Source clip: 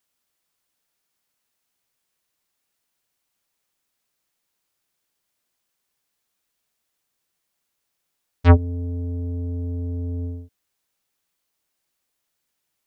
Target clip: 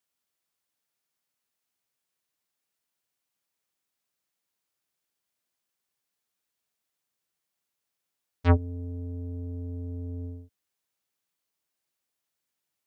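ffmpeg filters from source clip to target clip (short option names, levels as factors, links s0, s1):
-af "highpass=67,volume=0.447"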